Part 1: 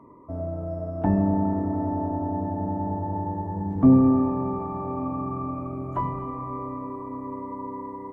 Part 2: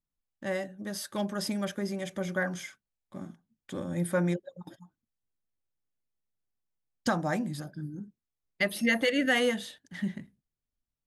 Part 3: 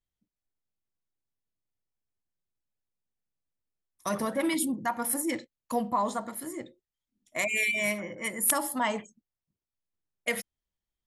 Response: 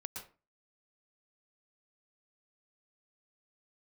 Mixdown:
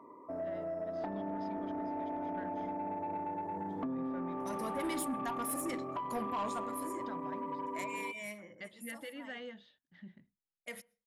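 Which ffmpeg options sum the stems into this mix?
-filter_complex "[0:a]highpass=340,acompressor=threshold=0.0251:ratio=16,volume=0.794,asplit=2[s0][s1];[s1]volume=0.141[s2];[1:a]agate=range=0.0224:threshold=0.00282:ratio=3:detection=peak,lowpass=f=4200:w=0.5412,lowpass=f=4200:w=1.3066,volume=0.112,asplit=2[s3][s4];[2:a]adelay=400,volume=0.447,afade=t=out:st=7.57:d=0.49:silence=0.398107,asplit=2[s5][s6];[s6]volume=0.075[s7];[s4]apad=whole_len=505536[s8];[s5][s8]sidechaincompress=threshold=0.00126:ratio=5:attack=43:release=333[s9];[3:a]atrim=start_sample=2205[s10];[s2][s7]amix=inputs=2:normalize=0[s11];[s11][s10]afir=irnorm=-1:irlink=0[s12];[s0][s3][s9][s12]amix=inputs=4:normalize=0,asoftclip=type=tanh:threshold=0.0316"

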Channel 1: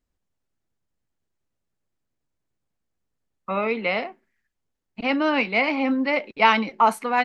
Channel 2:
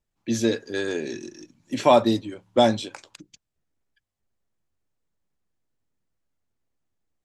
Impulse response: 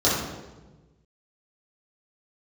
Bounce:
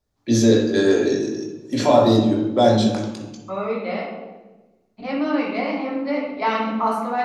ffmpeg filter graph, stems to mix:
-filter_complex "[0:a]volume=0.224,asplit=2[s0][s1];[s1]volume=0.376[s2];[1:a]alimiter=limit=0.188:level=0:latency=1:release=29,volume=1.06,asplit=2[s3][s4];[s4]volume=0.237[s5];[2:a]atrim=start_sample=2205[s6];[s2][s5]amix=inputs=2:normalize=0[s7];[s7][s6]afir=irnorm=-1:irlink=0[s8];[s0][s3][s8]amix=inputs=3:normalize=0"

